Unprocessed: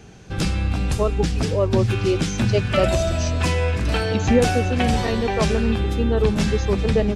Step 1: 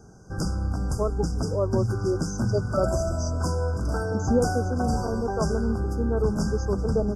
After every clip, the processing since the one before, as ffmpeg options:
-af "afftfilt=real='re*(1-between(b*sr/4096,1600,4700))':imag='im*(1-between(b*sr/4096,1600,4700))':win_size=4096:overlap=0.75,volume=-5dB"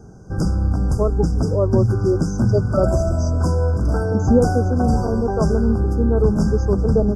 -af "tiltshelf=f=880:g=4.5,volume=4dB"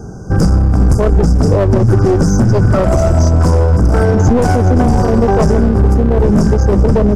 -af "aeval=exprs='clip(val(0),-1,0.1)':c=same,alimiter=level_in=14.5dB:limit=-1dB:release=50:level=0:latency=1,volume=-1dB"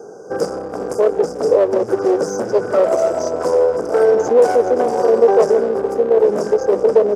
-af "highpass=f=470:t=q:w=3.6,volume=-6dB"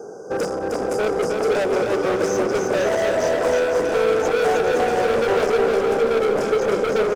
-filter_complex "[0:a]asoftclip=type=hard:threshold=-19dB,asplit=2[a][b];[b]aecho=0:1:310|511.5|642.5|727.6|782.9:0.631|0.398|0.251|0.158|0.1[c];[a][c]amix=inputs=2:normalize=0"

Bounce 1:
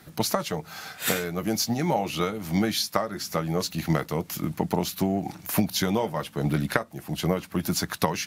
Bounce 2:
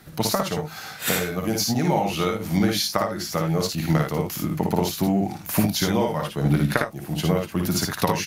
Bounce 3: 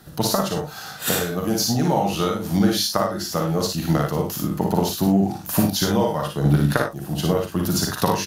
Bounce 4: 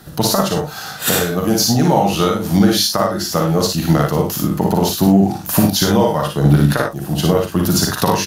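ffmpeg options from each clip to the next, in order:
-filter_complex "[0:a]lowshelf=f=93:g=5.5,asplit=2[a][b];[b]aecho=0:1:56|76:0.668|0.335[c];[a][c]amix=inputs=2:normalize=0,volume=1dB"
-filter_complex "[0:a]equalizer=f=2.2k:w=4.2:g=-11.5,asplit=2[a][b];[b]adelay=41,volume=-7dB[c];[a][c]amix=inputs=2:normalize=0,volume=1.5dB"
-af "alimiter=level_in=7.5dB:limit=-1dB:release=50:level=0:latency=1,volume=-1dB"

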